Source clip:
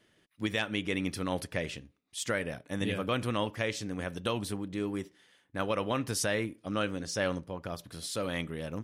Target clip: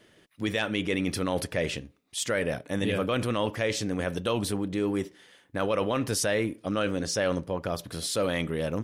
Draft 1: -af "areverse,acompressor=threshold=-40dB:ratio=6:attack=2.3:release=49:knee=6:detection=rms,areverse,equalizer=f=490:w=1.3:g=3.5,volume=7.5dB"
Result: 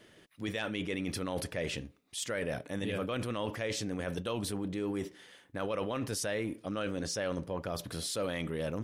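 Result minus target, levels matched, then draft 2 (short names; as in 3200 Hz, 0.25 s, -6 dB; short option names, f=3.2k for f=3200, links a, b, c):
compressor: peak gain reduction +8 dB
-af "areverse,acompressor=threshold=-30.5dB:ratio=6:attack=2.3:release=49:knee=6:detection=rms,areverse,equalizer=f=490:w=1.3:g=3.5,volume=7.5dB"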